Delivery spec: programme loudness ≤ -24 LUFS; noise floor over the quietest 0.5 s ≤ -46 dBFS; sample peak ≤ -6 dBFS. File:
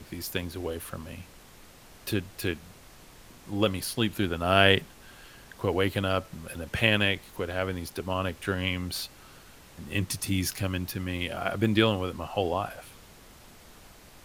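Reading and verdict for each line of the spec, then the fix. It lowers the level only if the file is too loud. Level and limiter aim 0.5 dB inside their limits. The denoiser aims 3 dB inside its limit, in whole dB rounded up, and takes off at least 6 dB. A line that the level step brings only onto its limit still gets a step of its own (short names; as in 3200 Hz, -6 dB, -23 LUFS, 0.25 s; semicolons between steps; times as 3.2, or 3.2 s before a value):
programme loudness -28.5 LUFS: OK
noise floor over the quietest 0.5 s -51 dBFS: OK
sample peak -4.0 dBFS: fail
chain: limiter -6.5 dBFS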